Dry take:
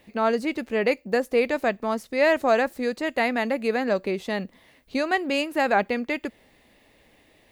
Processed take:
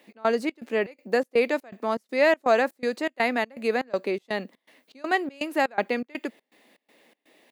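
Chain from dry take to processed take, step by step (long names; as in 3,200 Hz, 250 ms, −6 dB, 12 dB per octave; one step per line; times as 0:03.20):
high-pass filter 220 Hz 24 dB per octave
gate pattern "x.xx.xx.x" 122 BPM −24 dB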